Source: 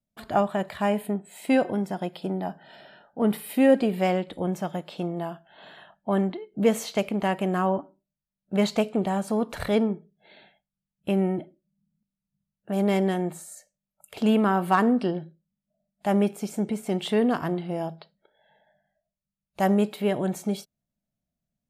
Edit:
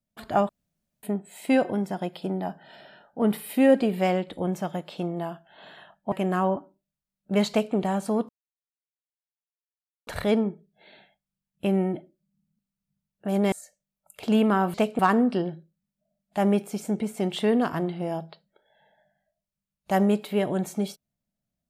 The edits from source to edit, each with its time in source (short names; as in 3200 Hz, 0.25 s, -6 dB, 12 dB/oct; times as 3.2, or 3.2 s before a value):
0.49–1.03 room tone
6.12–7.34 cut
8.72–8.97 copy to 14.68
9.51 insert silence 1.78 s
12.96–13.46 cut